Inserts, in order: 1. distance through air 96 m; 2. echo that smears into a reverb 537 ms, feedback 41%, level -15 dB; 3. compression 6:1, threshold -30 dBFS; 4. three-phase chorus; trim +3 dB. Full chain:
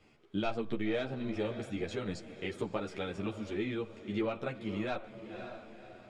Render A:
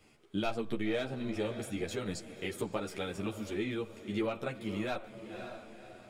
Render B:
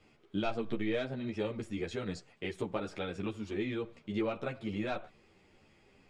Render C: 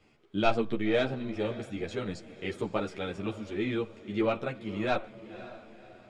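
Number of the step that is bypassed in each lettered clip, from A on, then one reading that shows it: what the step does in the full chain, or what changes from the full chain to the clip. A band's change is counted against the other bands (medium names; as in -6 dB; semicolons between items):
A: 1, 8 kHz band +8.5 dB; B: 2, momentary loudness spread change -5 LU; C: 3, mean gain reduction 2.5 dB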